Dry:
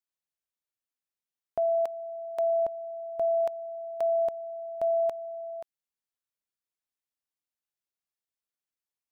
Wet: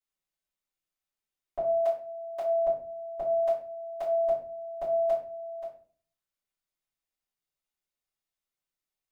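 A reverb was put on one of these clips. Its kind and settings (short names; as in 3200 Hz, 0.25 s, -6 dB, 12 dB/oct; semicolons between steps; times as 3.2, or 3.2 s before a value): shoebox room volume 39 m³, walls mixed, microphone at 2.7 m; gain -11.5 dB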